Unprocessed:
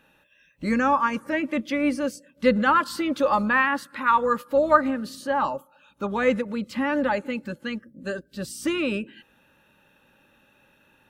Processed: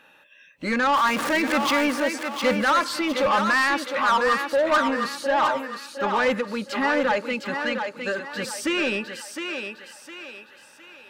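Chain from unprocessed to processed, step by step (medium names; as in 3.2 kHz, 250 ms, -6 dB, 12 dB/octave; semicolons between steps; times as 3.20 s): 0.94–1.87 s: jump at every zero crossing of -25 dBFS; overdrive pedal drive 23 dB, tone 4.7 kHz, clips at -4 dBFS; thinning echo 709 ms, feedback 41%, high-pass 340 Hz, level -5.5 dB; trim -8.5 dB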